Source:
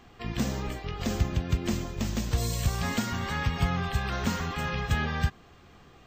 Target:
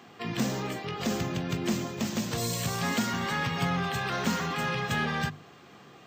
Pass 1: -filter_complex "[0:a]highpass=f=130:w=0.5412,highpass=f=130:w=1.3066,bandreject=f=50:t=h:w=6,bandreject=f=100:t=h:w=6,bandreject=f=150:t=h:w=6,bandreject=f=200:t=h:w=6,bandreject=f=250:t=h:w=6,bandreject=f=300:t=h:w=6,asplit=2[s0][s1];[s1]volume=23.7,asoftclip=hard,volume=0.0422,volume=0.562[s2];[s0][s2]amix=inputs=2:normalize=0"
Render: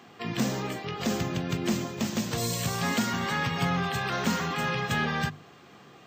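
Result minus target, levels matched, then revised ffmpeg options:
overload inside the chain: distortion -7 dB
-filter_complex "[0:a]highpass=f=130:w=0.5412,highpass=f=130:w=1.3066,bandreject=f=50:t=h:w=6,bandreject=f=100:t=h:w=6,bandreject=f=150:t=h:w=6,bandreject=f=200:t=h:w=6,bandreject=f=250:t=h:w=6,bandreject=f=300:t=h:w=6,asplit=2[s0][s1];[s1]volume=53.1,asoftclip=hard,volume=0.0188,volume=0.562[s2];[s0][s2]amix=inputs=2:normalize=0"

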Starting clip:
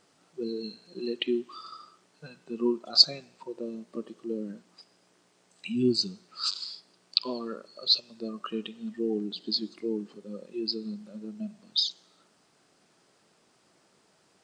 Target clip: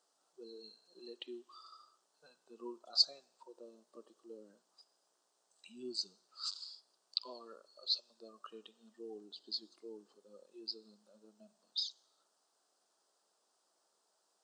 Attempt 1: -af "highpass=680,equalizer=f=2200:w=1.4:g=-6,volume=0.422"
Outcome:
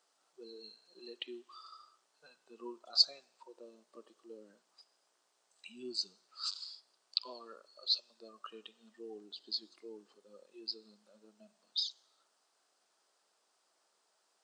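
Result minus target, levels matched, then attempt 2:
2 kHz band +4.5 dB
-af "highpass=680,equalizer=f=2200:w=1.4:g=-16.5,volume=0.422"

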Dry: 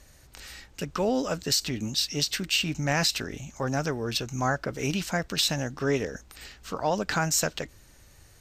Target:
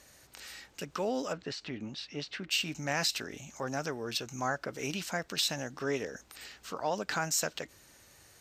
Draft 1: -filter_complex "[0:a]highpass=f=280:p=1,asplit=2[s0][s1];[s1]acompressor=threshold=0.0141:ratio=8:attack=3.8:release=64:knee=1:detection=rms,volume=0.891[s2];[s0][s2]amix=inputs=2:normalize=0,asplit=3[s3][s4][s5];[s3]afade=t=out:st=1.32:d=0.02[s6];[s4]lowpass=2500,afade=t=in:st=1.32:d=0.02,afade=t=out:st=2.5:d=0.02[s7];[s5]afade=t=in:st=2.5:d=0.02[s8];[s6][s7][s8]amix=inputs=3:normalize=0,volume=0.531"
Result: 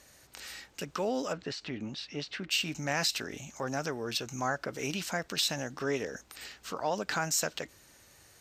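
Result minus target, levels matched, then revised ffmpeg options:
compression: peak gain reduction -8.5 dB
-filter_complex "[0:a]highpass=f=280:p=1,asplit=2[s0][s1];[s1]acompressor=threshold=0.00447:ratio=8:attack=3.8:release=64:knee=1:detection=rms,volume=0.891[s2];[s0][s2]amix=inputs=2:normalize=0,asplit=3[s3][s4][s5];[s3]afade=t=out:st=1.32:d=0.02[s6];[s4]lowpass=2500,afade=t=in:st=1.32:d=0.02,afade=t=out:st=2.5:d=0.02[s7];[s5]afade=t=in:st=2.5:d=0.02[s8];[s6][s7][s8]amix=inputs=3:normalize=0,volume=0.531"

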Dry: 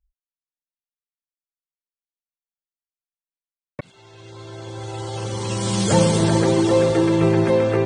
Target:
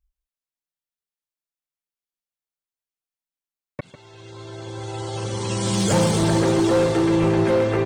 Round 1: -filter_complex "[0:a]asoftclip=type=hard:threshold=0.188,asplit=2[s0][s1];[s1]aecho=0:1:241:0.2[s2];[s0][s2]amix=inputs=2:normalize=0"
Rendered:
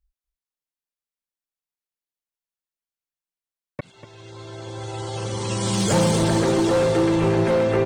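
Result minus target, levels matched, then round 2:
echo 93 ms late
-filter_complex "[0:a]asoftclip=type=hard:threshold=0.188,asplit=2[s0][s1];[s1]aecho=0:1:148:0.2[s2];[s0][s2]amix=inputs=2:normalize=0"

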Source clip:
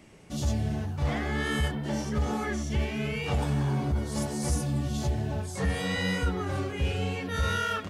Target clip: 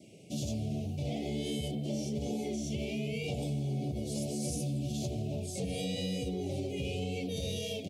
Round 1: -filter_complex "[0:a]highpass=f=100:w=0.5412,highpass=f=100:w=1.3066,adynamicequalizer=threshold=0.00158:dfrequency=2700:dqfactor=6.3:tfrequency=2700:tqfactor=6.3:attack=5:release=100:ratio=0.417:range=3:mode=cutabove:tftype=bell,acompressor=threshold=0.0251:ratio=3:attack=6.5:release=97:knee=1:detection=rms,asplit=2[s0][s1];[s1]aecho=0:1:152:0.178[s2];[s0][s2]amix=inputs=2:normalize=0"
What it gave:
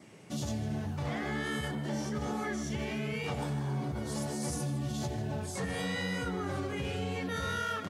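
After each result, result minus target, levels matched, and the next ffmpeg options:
1 kHz band +9.5 dB; echo-to-direct +8 dB
-filter_complex "[0:a]highpass=f=100:w=0.5412,highpass=f=100:w=1.3066,adynamicequalizer=threshold=0.00158:dfrequency=2700:dqfactor=6.3:tfrequency=2700:tqfactor=6.3:attack=5:release=100:ratio=0.417:range=3:mode=cutabove:tftype=bell,asuperstop=centerf=1300:order=12:qfactor=0.8,acompressor=threshold=0.0251:ratio=3:attack=6.5:release=97:knee=1:detection=rms,asplit=2[s0][s1];[s1]aecho=0:1:152:0.178[s2];[s0][s2]amix=inputs=2:normalize=0"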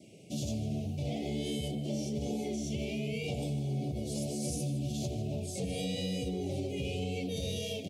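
echo-to-direct +8 dB
-filter_complex "[0:a]highpass=f=100:w=0.5412,highpass=f=100:w=1.3066,adynamicequalizer=threshold=0.00158:dfrequency=2700:dqfactor=6.3:tfrequency=2700:tqfactor=6.3:attack=5:release=100:ratio=0.417:range=3:mode=cutabove:tftype=bell,asuperstop=centerf=1300:order=12:qfactor=0.8,acompressor=threshold=0.0251:ratio=3:attack=6.5:release=97:knee=1:detection=rms,asplit=2[s0][s1];[s1]aecho=0:1:152:0.0708[s2];[s0][s2]amix=inputs=2:normalize=0"

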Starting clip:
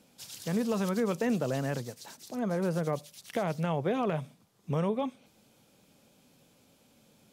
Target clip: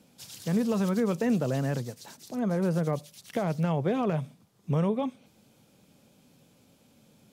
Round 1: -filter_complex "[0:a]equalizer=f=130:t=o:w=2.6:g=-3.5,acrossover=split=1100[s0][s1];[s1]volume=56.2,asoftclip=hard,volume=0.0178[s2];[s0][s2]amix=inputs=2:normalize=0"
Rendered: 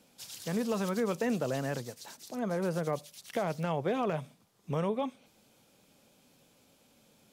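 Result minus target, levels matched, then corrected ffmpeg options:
125 Hz band -3.5 dB
-filter_complex "[0:a]equalizer=f=130:t=o:w=2.6:g=5,acrossover=split=1100[s0][s1];[s1]volume=56.2,asoftclip=hard,volume=0.0178[s2];[s0][s2]amix=inputs=2:normalize=0"

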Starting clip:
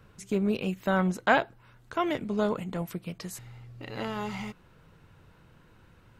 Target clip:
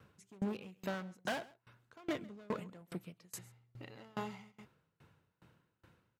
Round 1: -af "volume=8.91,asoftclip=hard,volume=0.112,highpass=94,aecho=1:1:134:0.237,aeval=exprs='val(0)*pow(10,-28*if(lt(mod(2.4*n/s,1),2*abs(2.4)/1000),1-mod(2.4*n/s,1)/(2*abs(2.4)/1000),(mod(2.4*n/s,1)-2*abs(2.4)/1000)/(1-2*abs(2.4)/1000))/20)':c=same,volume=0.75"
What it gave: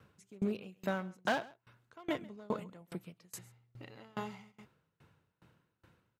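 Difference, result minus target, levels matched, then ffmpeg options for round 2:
overload inside the chain: distortion -8 dB
-af "volume=22.4,asoftclip=hard,volume=0.0447,highpass=94,aecho=1:1:134:0.237,aeval=exprs='val(0)*pow(10,-28*if(lt(mod(2.4*n/s,1),2*abs(2.4)/1000),1-mod(2.4*n/s,1)/(2*abs(2.4)/1000),(mod(2.4*n/s,1)-2*abs(2.4)/1000)/(1-2*abs(2.4)/1000))/20)':c=same,volume=0.75"

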